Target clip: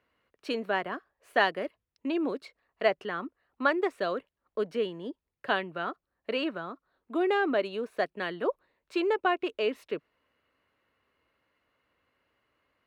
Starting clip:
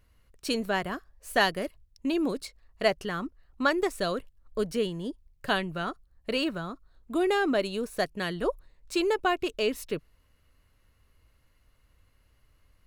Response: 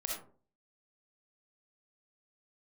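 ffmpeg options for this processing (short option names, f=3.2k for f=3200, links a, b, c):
-filter_complex "[0:a]highpass=85,acrossover=split=240 3400:gain=0.141 1 0.1[a][b][c];[a][b][c]amix=inputs=3:normalize=0"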